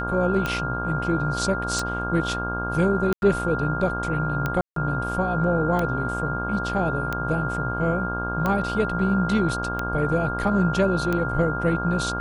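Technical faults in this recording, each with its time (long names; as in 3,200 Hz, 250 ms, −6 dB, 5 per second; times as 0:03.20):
mains buzz 60 Hz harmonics 27 −30 dBFS
scratch tick 45 rpm −12 dBFS
whistle 1,400 Hz −28 dBFS
0:03.13–0:03.22: drop-out 91 ms
0:04.61–0:04.76: drop-out 153 ms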